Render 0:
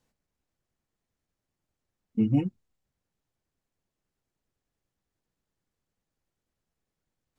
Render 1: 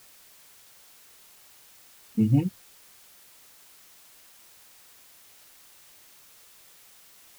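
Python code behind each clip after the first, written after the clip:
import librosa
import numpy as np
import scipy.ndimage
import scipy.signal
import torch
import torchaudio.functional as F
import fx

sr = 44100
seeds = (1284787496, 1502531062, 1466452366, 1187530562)

y = fx.peak_eq(x, sr, hz=94.0, db=11.0, octaves=2.2)
y = fx.dmg_noise_colour(y, sr, seeds[0], colour='white', level_db=-54.0)
y = fx.low_shelf(y, sr, hz=390.0, db=-4.5)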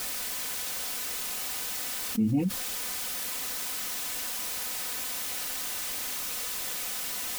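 y = x + 0.59 * np.pad(x, (int(4.0 * sr / 1000.0), 0))[:len(x)]
y = fx.env_flatten(y, sr, amount_pct=70)
y = y * 10.0 ** (-7.0 / 20.0)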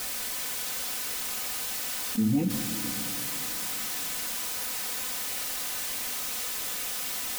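y = fx.rev_plate(x, sr, seeds[1], rt60_s=4.0, hf_ratio=0.9, predelay_ms=0, drr_db=5.5)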